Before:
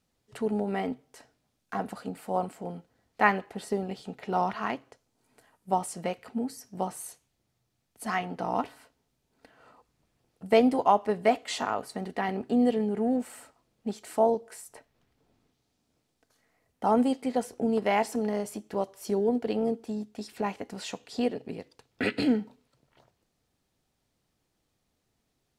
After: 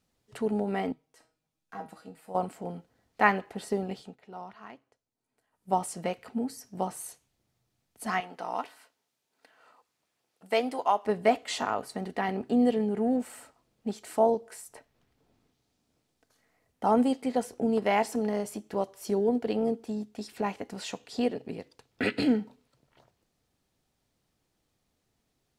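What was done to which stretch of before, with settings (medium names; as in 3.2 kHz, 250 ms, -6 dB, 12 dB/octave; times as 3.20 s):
0.92–2.35 s: feedback comb 160 Hz, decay 0.27 s, mix 80%
3.94–5.74 s: dip -15.5 dB, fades 0.24 s
8.20–11.05 s: high-pass 890 Hz 6 dB/octave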